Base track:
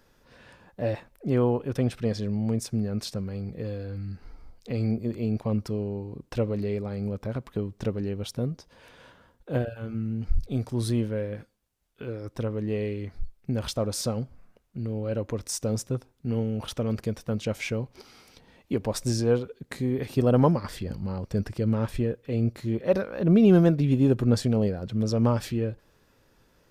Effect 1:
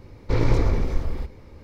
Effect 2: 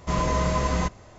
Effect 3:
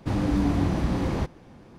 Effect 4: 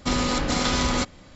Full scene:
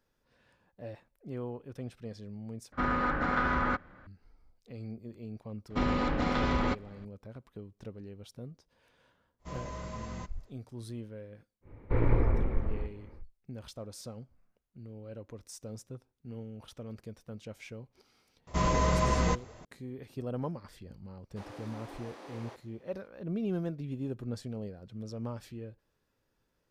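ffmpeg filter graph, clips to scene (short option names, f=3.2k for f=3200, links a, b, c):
-filter_complex "[4:a]asplit=2[a][b];[2:a]asplit=2[c][d];[0:a]volume=-15.5dB[e];[a]lowpass=f=1.5k:t=q:w=3.7[f];[b]lowpass=2.1k[g];[1:a]lowpass=f=2.3k:w=0.5412,lowpass=f=2.3k:w=1.3066[h];[3:a]highpass=f=390:w=0.5412,highpass=f=390:w=1.3066[i];[e]asplit=2[j][k];[j]atrim=end=2.724[l];[f]atrim=end=1.35,asetpts=PTS-STARTPTS,volume=-8dB[m];[k]atrim=start=4.066[n];[g]atrim=end=1.35,asetpts=PTS-STARTPTS,volume=-4.5dB,afade=t=in:d=0.004:c=hsin,afade=t=out:st=1.346:d=0.004:c=hsin,adelay=5700[o];[c]atrim=end=1.18,asetpts=PTS-STARTPTS,volume=-17.5dB,afade=t=in:d=0.1,afade=t=out:st=1.08:d=0.1,adelay=413658S[p];[h]atrim=end=1.63,asetpts=PTS-STARTPTS,volume=-6dB,afade=t=in:d=0.1,afade=t=out:st=1.53:d=0.1,adelay=11610[q];[d]atrim=end=1.18,asetpts=PTS-STARTPTS,volume=-3dB,afade=t=in:d=0.004:c=hsin,afade=t=out:st=1.176:d=0.004:c=hsin,adelay=18470[r];[i]atrim=end=1.78,asetpts=PTS-STARTPTS,volume=-14dB,afade=t=in:d=0.004:c=hsin,afade=t=out:st=1.776:d=0.004:c=hsin,adelay=21300[s];[l][m]acrossfade=d=0.004:c1=hsin:c2=hsin[t];[t][n]acrossfade=d=0.004:c1=hsin:c2=hsin[u];[u][o][p][q][r][s]amix=inputs=6:normalize=0"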